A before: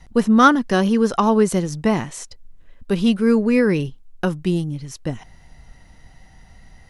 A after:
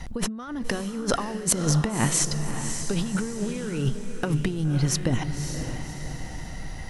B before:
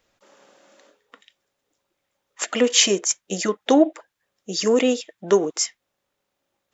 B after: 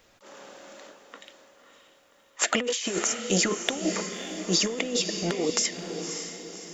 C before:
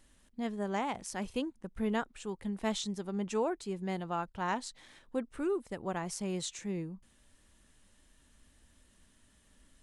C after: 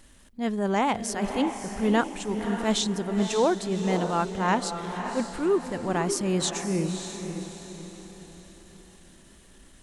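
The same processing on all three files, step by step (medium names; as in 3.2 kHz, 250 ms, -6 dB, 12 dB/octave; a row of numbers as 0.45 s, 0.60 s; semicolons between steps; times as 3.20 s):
transient shaper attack -8 dB, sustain -1 dB; compressor with a negative ratio -30 dBFS, ratio -1; echo that smears into a reverb 566 ms, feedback 45%, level -7.5 dB; normalise loudness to -27 LUFS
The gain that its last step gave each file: +2.5 dB, +2.0 dB, +11.0 dB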